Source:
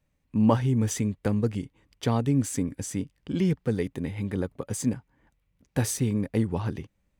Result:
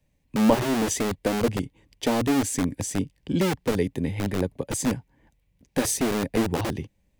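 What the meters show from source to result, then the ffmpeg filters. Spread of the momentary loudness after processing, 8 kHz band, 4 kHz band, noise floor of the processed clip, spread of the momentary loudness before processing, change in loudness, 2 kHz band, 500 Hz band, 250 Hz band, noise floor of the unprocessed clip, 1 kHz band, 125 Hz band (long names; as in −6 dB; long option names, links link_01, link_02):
8 LU, +5.0 dB, +8.5 dB, −70 dBFS, 9 LU, +2.0 dB, +8.0 dB, +5.0 dB, +1.5 dB, −74 dBFS, +5.5 dB, −4.0 dB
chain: -filter_complex "[0:a]equalizer=frequency=1300:width=3.6:gain=-13,acrossover=split=180|590|7200[link_01][link_02][link_03][link_04];[link_01]aeval=exprs='(mod(26.6*val(0)+1,2)-1)/26.6':channel_layout=same[link_05];[link_05][link_02][link_03][link_04]amix=inputs=4:normalize=0,volume=4.5dB"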